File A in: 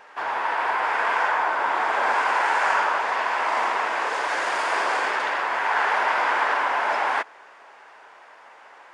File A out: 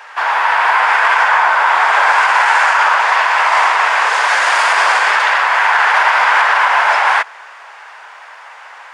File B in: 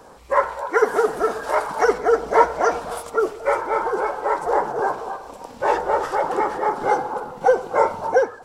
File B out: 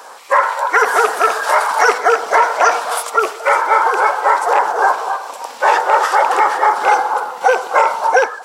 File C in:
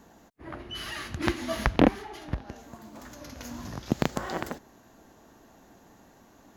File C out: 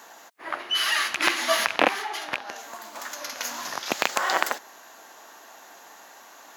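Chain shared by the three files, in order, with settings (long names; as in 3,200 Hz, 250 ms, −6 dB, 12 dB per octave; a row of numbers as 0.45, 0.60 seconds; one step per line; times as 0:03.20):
loose part that buzzes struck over −31 dBFS, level −25 dBFS
high-pass filter 890 Hz 12 dB per octave
brickwall limiter −16 dBFS
normalise the peak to −2 dBFS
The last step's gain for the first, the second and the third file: +14.0, +14.0, +14.0 decibels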